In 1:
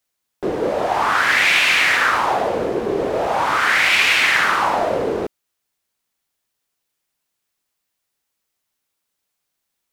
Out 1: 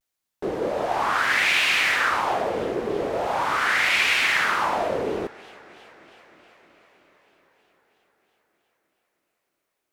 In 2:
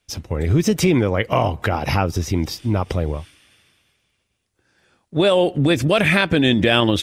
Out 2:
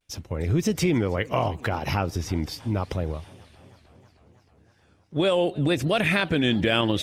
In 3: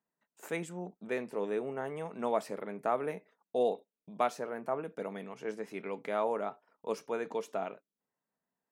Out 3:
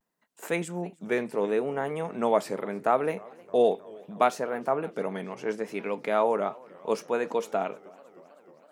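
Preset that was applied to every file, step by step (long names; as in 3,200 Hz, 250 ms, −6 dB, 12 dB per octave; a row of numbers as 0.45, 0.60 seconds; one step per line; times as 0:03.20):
pitch vibrato 0.72 Hz 62 cents
feedback echo with a swinging delay time 315 ms, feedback 73%, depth 178 cents, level −24 dB
normalise the peak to −9 dBFS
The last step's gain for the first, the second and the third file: −5.5, −6.0, +7.5 decibels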